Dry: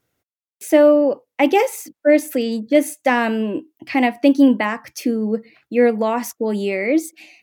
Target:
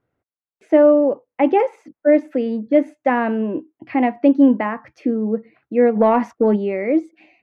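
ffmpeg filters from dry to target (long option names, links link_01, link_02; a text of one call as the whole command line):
ffmpeg -i in.wav -filter_complex "[0:a]lowpass=1500,asplit=3[link_01][link_02][link_03];[link_01]afade=type=out:start_time=5.95:duration=0.02[link_04];[link_02]acontrast=53,afade=type=in:start_time=5.95:duration=0.02,afade=type=out:start_time=6.55:duration=0.02[link_05];[link_03]afade=type=in:start_time=6.55:duration=0.02[link_06];[link_04][link_05][link_06]amix=inputs=3:normalize=0" out.wav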